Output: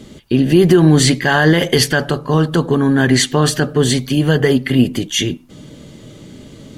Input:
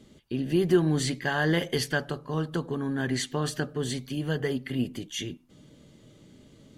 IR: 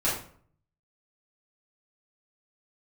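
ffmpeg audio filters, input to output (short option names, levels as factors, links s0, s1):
-af "alimiter=level_in=7.5:limit=0.891:release=50:level=0:latency=1,volume=0.891"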